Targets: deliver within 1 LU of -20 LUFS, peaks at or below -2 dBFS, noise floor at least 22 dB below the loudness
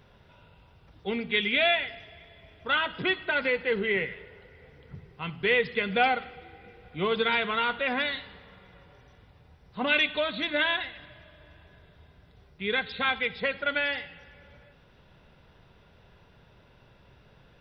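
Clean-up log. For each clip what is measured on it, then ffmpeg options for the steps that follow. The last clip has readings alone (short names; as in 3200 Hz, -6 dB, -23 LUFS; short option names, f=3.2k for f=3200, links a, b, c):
loudness -27.0 LUFS; peak -9.5 dBFS; loudness target -20.0 LUFS
-> -af "volume=7dB"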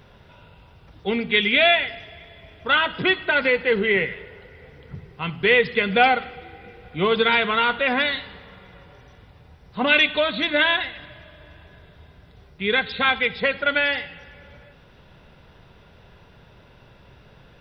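loudness -20.0 LUFS; peak -2.5 dBFS; noise floor -51 dBFS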